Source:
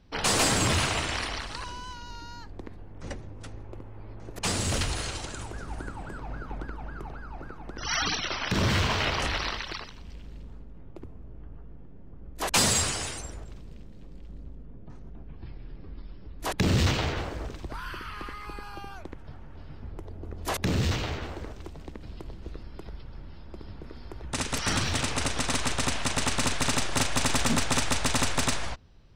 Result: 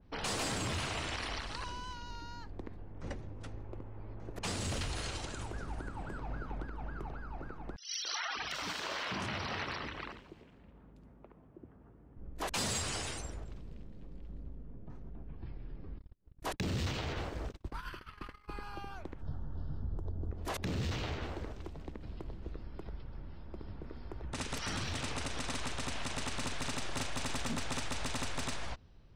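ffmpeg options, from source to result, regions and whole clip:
ffmpeg -i in.wav -filter_complex "[0:a]asettb=1/sr,asplit=3[link_01][link_02][link_03];[link_01]atrim=end=7.764[link_04];[link_02]atrim=start=7.76:end=12.17,asetpts=PTS-STARTPTS,afade=type=in:duration=0.004:curve=qsin,afade=type=out:start_time=4.406:duration=0.004:curve=qsin,highpass=frequency=260:poles=1,acrossover=split=440|3200[link_05][link_06][link_07];[link_06]adelay=280[link_08];[link_05]adelay=600[link_09];[link_09][link_08][link_07]amix=inputs=3:normalize=0,atrim=end_sample=194481[link_10];[link_03]atrim=start=12.166[link_11];[link_04][link_10]acrossfade=duration=0.004:curve1=hsin:curve2=qsin[link_12];[link_12][link_11]acrossfade=duration=0.004:curve1=qsin:curve2=hsin,asettb=1/sr,asplit=3[link_13][link_14][link_15];[link_13]atrim=end=15.984[link_16];[link_14]atrim=start=15.98:end=18.49,asetpts=PTS-STARTPTS,afade=type=in:duration=0.004:curve=qsin,afade=type=out:start_time=2.506:duration=0.004:curve=qsin,agate=range=-42dB:threshold=-37dB:ratio=16:release=100:detection=peak,highshelf=frequency=6900:gain=4,acompressor=mode=upward:threshold=-43dB:ratio=2.5:attack=3.2:release=140:knee=2.83:detection=peak[link_17];[link_15]atrim=start=18.486[link_18];[link_16][link_17]acrossfade=duration=0.004:curve1=hsin:curve2=qsin[link_19];[link_19][link_18]acrossfade=duration=0.004:curve1=qsin:curve2=hsin,asettb=1/sr,asplit=3[link_20][link_21][link_22];[link_20]atrim=end=19.214[link_23];[link_21]atrim=start=19.21:end=20.31,asetpts=PTS-STARTPTS,afade=type=in:duration=0.004:curve=qsin,afade=type=out:start_time=1.096:duration=0.004:curve=qsin,asuperstop=centerf=2300:order=4:qfactor=1.5,bass=frequency=250:gain=8,treble=frequency=4000:gain=2[link_24];[link_22]atrim=start=20.306[link_25];[link_23][link_24]acrossfade=duration=0.004:curve1=hsin:curve2=qsin[link_26];[link_26][link_25]acrossfade=duration=0.004:curve1=qsin:curve2=hsin,highshelf=frequency=3400:gain=-11,alimiter=level_in=2.5dB:limit=-24dB:level=0:latency=1:release=85,volume=-2.5dB,adynamicequalizer=threshold=0.00282:dfrequency=2500:dqfactor=0.7:tfrequency=2500:tqfactor=0.7:attack=5:release=100:ratio=0.375:range=3:mode=boostabove:tftype=highshelf,volume=-3dB" out.wav

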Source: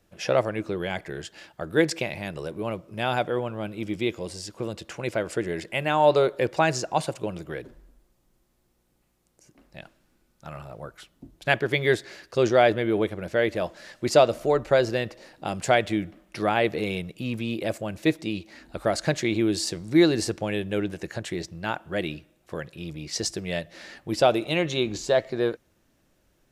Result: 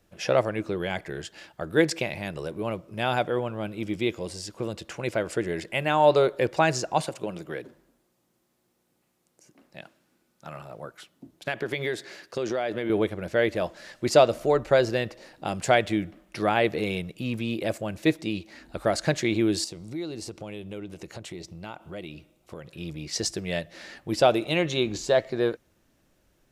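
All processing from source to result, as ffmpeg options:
ffmpeg -i in.wav -filter_complex "[0:a]asettb=1/sr,asplit=3[link_01][link_02][link_03];[link_01]atrim=end=7.034[link_04];[link_02]atrim=start=7.03:end=12.9,asetpts=PTS-STARTPTS,afade=type=in:duration=0.004:curve=qsin,afade=type=out:start_time=5.866:duration=0.004:curve=qsin,highpass=150,acompressor=threshold=-24dB:ratio=6:attack=3.2:release=140:knee=1:detection=peak[link_05];[link_03]atrim=start=12.896[link_06];[link_04][link_05]acrossfade=duration=0.004:curve1=hsin:curve2=qsin[link_07];[link_07][link_06]acrossfade=duration=0.004:curve1=qsin:curve2=hsin,asettb=1/sr,asplit=3[link_08][link_09][link_10];[link_08]atrim=end=19.644[link_11];[link_09]atrim=start=19.64:end=22.71,asetpts=PTS-STARTPTS,afade=type=in:duration=0.004:curve=qsin,afade=type=out:start_time=3.066:duration=0.004:curve=qsin,equalizer=frequency=1700:width_type=o:width=0.21:gain=-13,acompressor=threshold=-38dB:ratio=2.5:attack=3.2:release=140:knee=1:detection=peak[link_12];[link_10]atrim=start=22.706[link_13];[link_11][link_12]acrossfade=duration=0.004:curve1=hsin:curve2=qsin[link_14];[link_14][link_13]acrossfade=duration=0.004:curve1=qsin:curve2=hsin" out.wav

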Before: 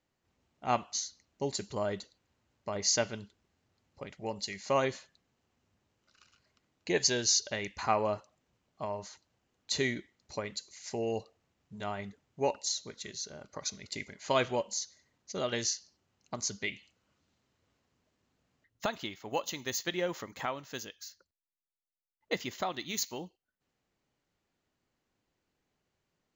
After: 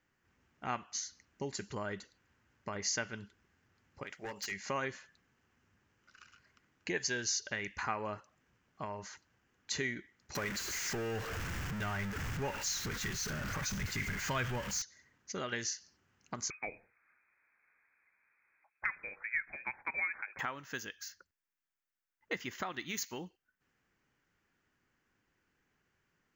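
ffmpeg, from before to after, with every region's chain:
ffmpeg -i in.wav -filter_complex "[0:a]asettb=1/sr,asplit=3[link_01][link_02][link_03];[link_01]atrim=end=4.034[link_04];[link_02]atrim=start=4.03:end=4.52,asetpts=PTS-STARTPTS,afade=type=in:duration=0.004:curve=qsin,afade=type=out:start_time=0.486:duration=0.004:curve=qsin,bass=frequency=250:gain=-14,treble=frequency=4000:gain=5,asoftclip=type=hard:threshold=-35.5dB[link_05];[link_03]atrim=start=4.516[link_06];[link_04][link_05]acrossfade=duration=0.004:curve1=hsin:curve2=qsin[link_07];[link_07][link_06]acrossfade=duration=0.004:curve1=qsin:curve2=hsin,asettb=1/sr,asplit=3[link_08][link_09][link_10];[link_08]atrim=end=10.354[link_11];[link_09]atrim=start=10.35:end=14.82,asetpts=PTS-STARTPTS,afade=type=in:duration=0.004:curve=qsin,afade=type=out:start_time=4.466:duration=0.004:curve=qsin,aeval=exprs='val(0)+0.5*0.0266*sgn(val(0))':channel_layout=same,asubboost=boost=5.5:cutoff=140[link_12];[link_10]atrim=start=14.816[link_13];[link_11][link_12]acrossfade=duration=0.004:curve1=hsin:curve2=qsin[link_14];[link_14][link_13]acrossfade=duration=0.004:curve1=qsin:curve2=hsin,asettb=1/sr,asplit=3[link_15][link_16][link_17];[link_15]atrim=end=16.504[link_18];[link_16]atrim=start=16.5:end=20.39,asetpts=PTS-STARTPTS,afade=type=in:duration=0.004:curve=qsin,afade=type=out:start_time=3.886:duration=0.004:curve=qsin,highpass=290,lowpass=frequency=2300:width_type=q:width=0.5098,lowpass=frequency=2300:width_type=q:width=0.6013,lowpass=frequency=2300:width_type=q:width=0.9,lowpass=frequency=2300:width_type=q:width=2.563,afreqshift=-2700[link_19];[link_17]atrim=start=20.386[link_20];[link_18][link_19]acrossfade=duration=0.004:curve1=hsin:curve2=qsin[link_21];[link_21][link_20]acrossfade=duration=0.004:curve1=qsin:curve2=hsin,equalizer=frequency=630:width_type=o:width=0.67:gain=-6,equalizer=frequency=1600:width_type=o:width=0.67:gain=8,equalizer=frequency=4000:width_type=o:width=0.67:gain=-12,equalizer=frequency=10000:width_type=o:width=0.67:gain=-10,acompressor=threshold=-44dB:ratio=2,equalizer=frequency=4100:width_type=o:width=1.6:gain=6,volume=2.5dB" out.wav

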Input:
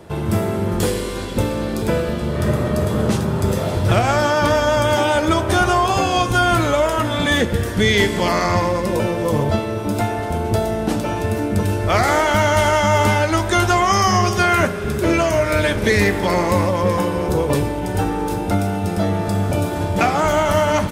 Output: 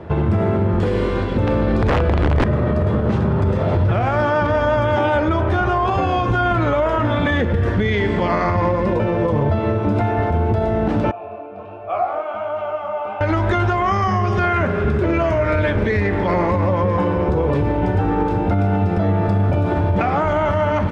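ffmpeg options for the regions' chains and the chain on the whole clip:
ffmpeg -i in.wav -filter_complex "[0:a]asettb=1/sr,asplit=3[link_01][link_02][link_03];[link_01]atrim=end=1.474[link_04];[link_02]atrim=start=1.47:end=2.44,asetpts=PTS-STARTPTS,afade=type=in:duration=0.004:curve=qsin,afade=type=out:start_time=0.966:duration=0.004:curve=qsin,asubboost=boost=9.5:cutoff=130,acontrast=83,aeval=exprs='(mod(1.88*val(0)+1,2)-1)/1.88':channel_layout=same[link_05];[link_03]atrim=start=2.436[link_06];[link_04][link_05]acrossfade=duration=0.004:curve1=hsin:curve2=qsin[link_07];[link_07][link_06]acrossfade=duration=0.004:curve1=qsin:curve2=hsin,asettb=1/sr,asplit=3[link_08][link_09][link_10];[link_08]atrim=end=11.114[link_11];[link_09]atrim=start=11.11:end=13.21,asetpts=PTS-STARTPTS,afade=type=in:duration=0.004:curve=qsin,afade=type=out:start_time=2.096:duration=0.004:curve=qsin,asplit=3[link_12][link_13][link_14];[link_12]bandpass=frequency=730:width_type=q:width=8,volume=0dB[link_15];[link_13]bandpass=frequency=1090:width_type=q:width=8,volume=-6dB[link_16];[link_14]bandpass=frequency=2440:width_type=q:width=8,volume=-9dB[link_17];[link_15][link_16][link_17]amix=inputs=3:normalize=0,flanger=delay=18.5:depth=6.6:speed=1.3[link_18];[link_10]atrim=start=13.206[link_19];[link_11][link_18]acrossfade=duration=0.004:curve1=hsin:curve2=qsin[link_20];[link_20][link_19]acrossfade=duration=0.004:curve1=qsin:curve2=hsin,lowpass=2100,equalizer=frequency=83:width=1.9:gain=5.5,alimiter=limit=-16dB:level=0:latency=1:release=89,volume=6dB" out.wav

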